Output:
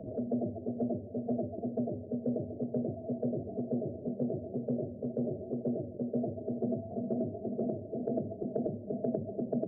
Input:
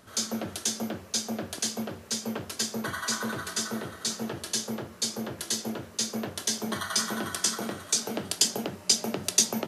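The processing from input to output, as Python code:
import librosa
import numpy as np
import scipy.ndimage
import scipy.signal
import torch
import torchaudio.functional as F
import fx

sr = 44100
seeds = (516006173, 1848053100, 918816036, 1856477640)

y = scipy.signal.sosfilt(scipy.signal.cheby1(8, 1.0, 690.0, 'lowpass', fs=sr, output='sos'), x)
y = fx.echo_wet_lowpass(y, sr, ms=76, feedback_pct=81, hz=420.0, wet_db=-21)
y = fx.pitch_keep_formants(y, sr, semitones=1.5)
y = fx.band_squash(y, sr, depth_pct=70)
y = y * librosa.db_to_amplitude(2.0)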